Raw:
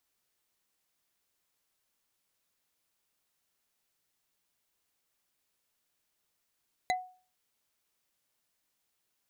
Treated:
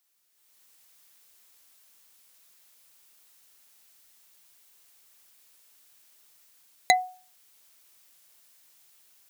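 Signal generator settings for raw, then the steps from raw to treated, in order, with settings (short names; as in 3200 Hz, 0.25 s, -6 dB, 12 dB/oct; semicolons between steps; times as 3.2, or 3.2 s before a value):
wood hit bar, lowest mode 737 Hz, decay 0.40 s, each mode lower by 3 dB, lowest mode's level -24 dB
tilt +2 dB/oct; AGC gain up to 13 dB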